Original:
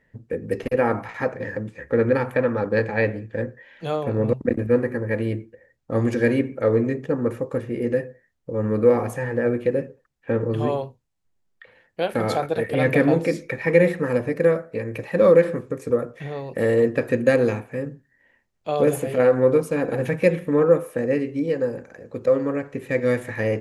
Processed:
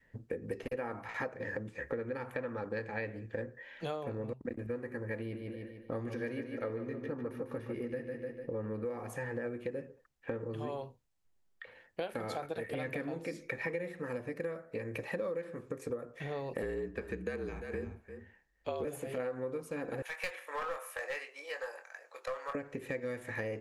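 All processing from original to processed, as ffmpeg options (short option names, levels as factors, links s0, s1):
-filter_complex "[0:a]asettb=1/sr,asplit=3[s0][s1][s2];[s0]atrim=end=5.184[s3];[s1]atrim=start=5.18:end=8.85,asetpts=PTS-STARTPTS,afade=t=in:d=0.004:c=qsin,afade=t=out:st=3.666:d=0.004:c=qsin,equalizer=f=7400:t=o:w=0.26:g=-15,aecho=1:1:149|298|447|596|745:0.398|0.187|0.0879|0.0413|0.0194,atrim=end_sample=161847[s4];[s2]atrim=start=8.846[s5];[s3][s4]acrossfade=d=0.004:c1=hsin:c2=qsin[s6];[s6][s5]acrossfade=d=0.004:c1=qsin:c2=hsin,asettb=1/sr,asplit=3[s7][s8][s9];[s7]atrim=end=16.624[s10];[s8]atrim=start=16.62:end=18.85,asetpts=PTS-STARTPTS,afade=t=in:d=0.004:c=qsin,afade=t=out:st=2.226:d=0.004:c=qsin,aecho=1:1:347:0.141,atrim=end_sample=98343,afreqshift=-49,highshelf=f=8500:g=-7[s11];[s9]atrim=start=18.846[s12];[s10][s11]acrossfade=d=0.004:c1=hsin:c2=qsin[s13];[s13][s12]acrossfade=d=0.004:c1=qsin:c2=hsin,asettb=1/sr,asplit=3[s14][s15][s16];[s14]atrim=end=20.024[s17];[s15]atrim=start=20.02:end=22.55,asetpts=PTS-STARTPTS,afade=t=in:d=0.004:c=qsin,afade=t=out:st=2.526:d=0.004:c=qsin,highpass=f=790:w=0.5412,highpass=f=790:w=1.3066,aeval=exprs='clip(val(0),-1,0.0282)':c=same,asplit=2[s18][s19];[s19]adelay=23,volume=0.398[s20];[s18][s20]amix=inputs=2:normalize=0,atrim=end_sample=111573[s21];[s16]atrim=start=22.546[s22];[s17][s21]acrossfade=d=0.004:c1=hsin:c2=qsin[s23];[s23][s22]acrossfade=d=0.004:c1=qsin:c2=hsin,adynamicequalizer=threshold=0.0316:dfrequency=520:dqfactor=1.4:tfrequency=520:tqfactor=1.4:attack=5:release=100:ratio=0.375:range=1.5:mode=cutabove:tftype=bell,acompressor=threshold=0.0282:ratio=12,equalizer=f=150:w=0.74:g=-4.5,volume=0.794"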